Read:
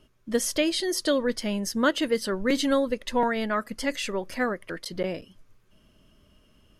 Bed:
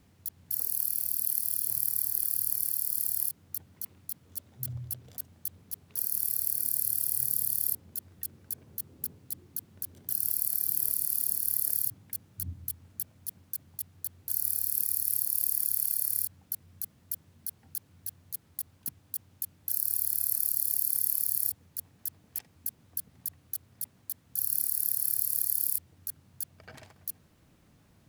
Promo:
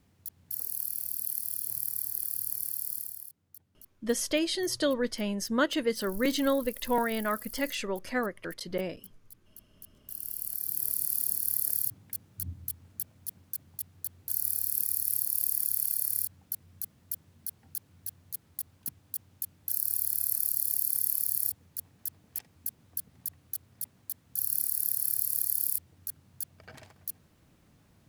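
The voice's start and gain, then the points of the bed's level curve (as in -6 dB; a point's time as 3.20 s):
3.75 s, -3.5 dB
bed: 2.92 s -4 dB
3.26 s -15.5 dB
9.60 s -15.5 dB
11.01 s -0.5 dB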